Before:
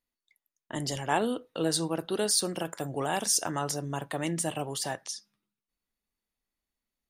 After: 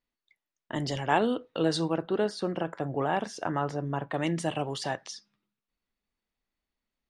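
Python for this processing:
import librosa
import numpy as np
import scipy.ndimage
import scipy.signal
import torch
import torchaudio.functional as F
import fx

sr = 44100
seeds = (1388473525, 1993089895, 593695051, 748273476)

y = fx.lowpass(x, sr, hz=fx.steps((0.0, 4100.0), (1.97, 2000.0), (4.14, 4300.0)), slope=12)
y = F.gain(torch.from_numpy(y), 2.5).numpy()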